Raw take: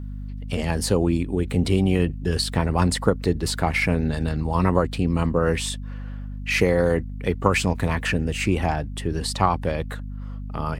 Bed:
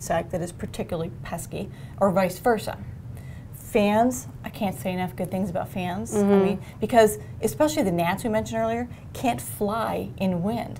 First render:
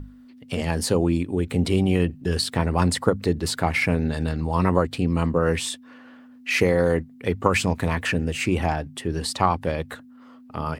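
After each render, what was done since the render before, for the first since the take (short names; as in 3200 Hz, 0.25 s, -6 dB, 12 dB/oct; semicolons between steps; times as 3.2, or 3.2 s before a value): notches 50/100/150/200 Hz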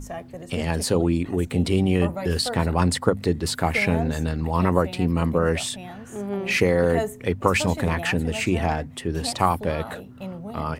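add bed -10 dB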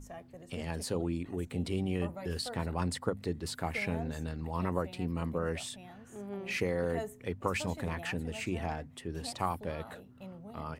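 gain -12.5 dB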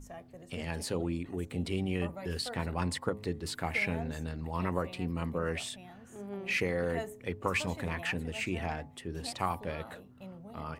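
de-hum 106.2 Hz, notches 11; dynamic EQ 2300 Hz, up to +5 dB, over -50 dBFS, Q 1.1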